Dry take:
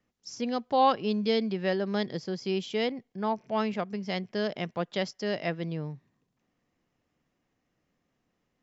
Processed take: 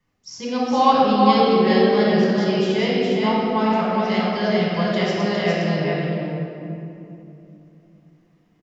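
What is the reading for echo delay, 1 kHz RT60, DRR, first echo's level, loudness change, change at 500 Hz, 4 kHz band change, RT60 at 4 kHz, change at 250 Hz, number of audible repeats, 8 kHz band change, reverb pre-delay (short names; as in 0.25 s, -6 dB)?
0.41 s, 2.6 s, -8.0 dB, -3.0 dB, +11.0 dB, +11.0 dB, +9.5 dB, 1.5 s, +12.5 dB, 1, n/a, 3 ms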